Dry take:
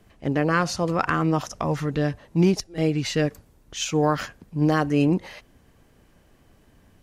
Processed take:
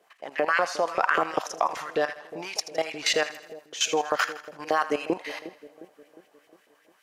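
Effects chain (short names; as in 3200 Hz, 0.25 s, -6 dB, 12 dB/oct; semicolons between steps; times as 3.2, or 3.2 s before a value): LFO high-pass saw up 5.1 Hz 450–2500 Hz; level quantiser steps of 14 dB; split-band echo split 640 Hz, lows 0.357 s, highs 81 ms, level -14 dB; gain +5.5 dB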